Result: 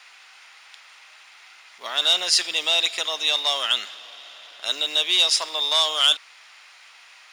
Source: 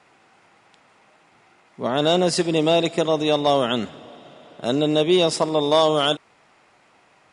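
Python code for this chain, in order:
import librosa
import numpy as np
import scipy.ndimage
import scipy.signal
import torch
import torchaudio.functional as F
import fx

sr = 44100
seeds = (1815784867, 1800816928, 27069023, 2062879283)

y = fx.law_mismatch(x, sr, coded='mu')
y = scipy.signal.sosfilt(scipy.signal.butter(2, 1400.0, 'highpass', fs=sr, output='sos'), y)
y = fx.peak_eq(y, sr, hz=4300.0, db=8.5, octaves=2.1)
y = fx.notch(y, sr, hz=7900.0, q=9.3)
y = fx.transformer_sat(y, sr, knee_hz=2800.0)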